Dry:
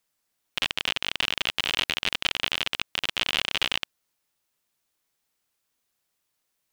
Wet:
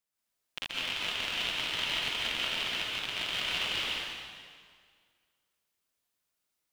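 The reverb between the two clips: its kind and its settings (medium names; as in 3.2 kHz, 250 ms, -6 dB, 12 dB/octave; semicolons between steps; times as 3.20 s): plate-style reverb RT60 1.9 s, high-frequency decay 0.9×, pre-delay 115 ms, DRR -6 dB; trim -11.5 dB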